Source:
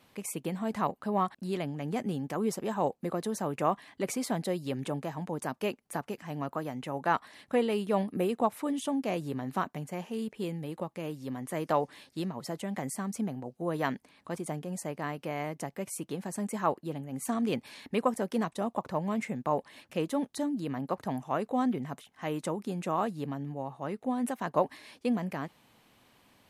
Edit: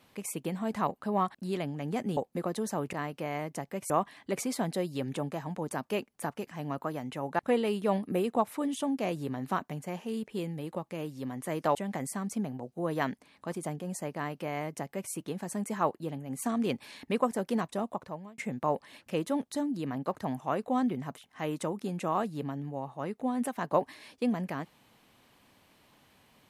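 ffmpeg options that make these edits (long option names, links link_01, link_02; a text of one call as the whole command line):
ffmpeg -i in.wav -filter_complex "[0:a]asplit=7[link_01][link_02][link_03][link_04][link_05][link_06][link_07];[link_01]atrim=end=2.172[link_08];[link_02]atrim=start=2.848:end=3.612[link_09];[link_03]atrim=start=14.978:end=15.952[link_10];[link_04]atrim=start=3.608:end=7.102[link_11];[link_05]atrim=start=7.438:end=11.802[link_12];[link_06]atrim=start=12.578:end=19.21,asetpts=PTS-STARTPTS,afade=type=out:start_time=6.012:duration=0.62[link_13];[link_07]atrim=start=19.21,asetpts=PTS-STARTPTS,afade=type=in:duration=0.004:curve=hsin[link_14];[link_08][link_09]acrossfade=duration=0.004:curve1=hsin:curve2=hsin[link_15];[link_15][link_10]acrossfade=duration=0.004:curve1=hsin:curve2=hsin[link_16];[link_16][link_11]acrossfade=duration=0.004:curve1=hsin:curve2=hsin[link_17];[link_17][link_12]acrossfade=duration=0.004:curve1=hsin:curve2=hsin[link_18];[link_13][link_14]concat=n=2:v=0:a=1[link_19];[link_18][link_19]acrossfade=duration=0.004:curve1=hsin:curve2=hsin" out.wav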